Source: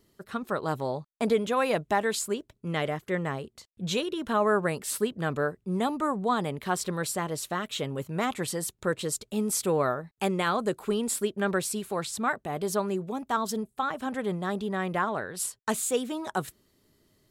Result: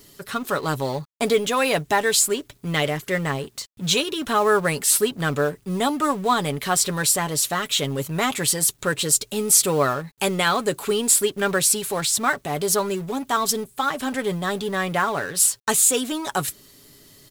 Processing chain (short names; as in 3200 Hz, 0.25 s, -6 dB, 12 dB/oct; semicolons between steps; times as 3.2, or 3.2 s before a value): G.711 law mismatch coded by mu; high shelf 2300 Hz +10 dB; comb 7.1 ms, depth 40%; gain +3 dB